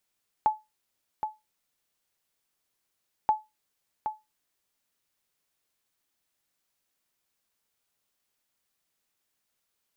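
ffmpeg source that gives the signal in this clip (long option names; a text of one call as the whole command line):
ffmpeg -f lavfi -i "aevalsrc='0.188*(sin(2*PI*861*mod(t,2.83))*exp(-6.91*mod(t,2.83)/0.21)+0.398*sin(2*PI*861*max(mod(t,2.83)-0.77,0))*exp(-6.91*max(mod(t,2.83)-0.77,0)/0.21))':duration=5.66:sample_rate=44100" out.wav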